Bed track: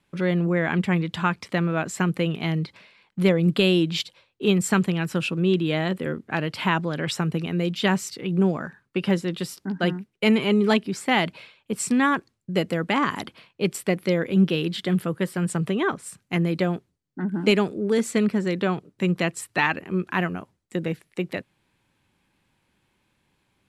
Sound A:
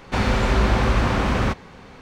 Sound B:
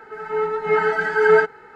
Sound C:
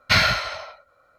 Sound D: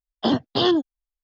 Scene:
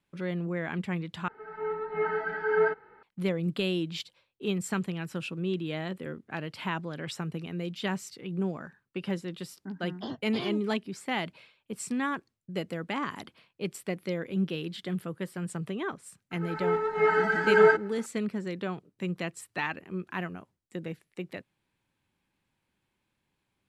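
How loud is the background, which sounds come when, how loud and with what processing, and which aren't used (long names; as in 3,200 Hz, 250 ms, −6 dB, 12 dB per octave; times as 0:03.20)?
bed track −10 dB
0:01.28: overwrite with B −9.5 dB + high-frequency loss of the air 300 metres
0:09.78: mix in D −17 dB
0:16.31: mix in B −5 dB
not used: A, C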